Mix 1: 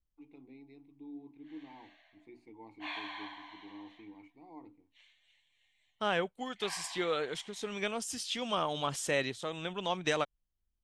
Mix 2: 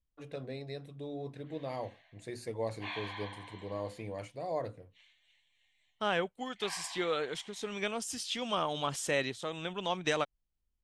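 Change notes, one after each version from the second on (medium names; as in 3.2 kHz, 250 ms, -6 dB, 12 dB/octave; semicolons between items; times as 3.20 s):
first voice: remove vowel filter u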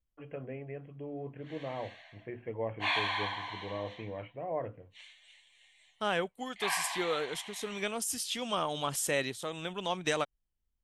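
first voice: add brick-wall FIR low-pass 3.3 kHz; background +10.5 dB; master: remove low-pass 6.7 kHz 12 dB/octave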